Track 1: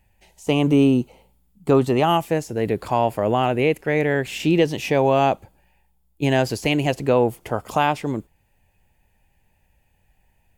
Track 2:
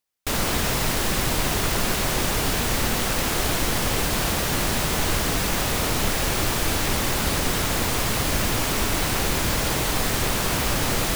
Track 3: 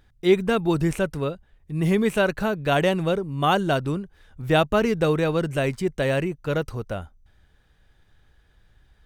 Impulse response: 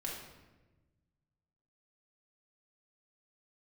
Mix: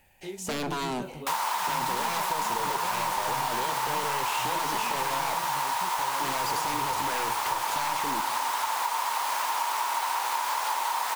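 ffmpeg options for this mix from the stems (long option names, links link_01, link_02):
-filter_complex "[0:a]aeval=exprs='0.531*sin(PI/2*4.47*val(0)/0.531)':channel_layout=same,highpass=frequency=530:poles=1,asoftclip=type=tanh:threshold=-18.5dB,volume=-11.5dB,asplit=2[link_01][link_02];[link_02]volume=-10dB[link_03];[1:a]highpass=frequency=930:width_type=q:width=9.4,adelay=1000,volume=-4.5dB[link_04];[2:a]acompressor=threshold=-28dB:ratio=5,flanger=delay=17:depth=6.7:speed=0.67,volume=-6.5dB[link_05];[3:a]atrim=start_sample=2205[link_06];[link_03][link_06]afir=irnorm=-1:irlink=0[link_07];[link_01][link_04][link_05][link_07]amix=inputs=4:normalize=0,acompressor=threshold=-25dB:ratio=6"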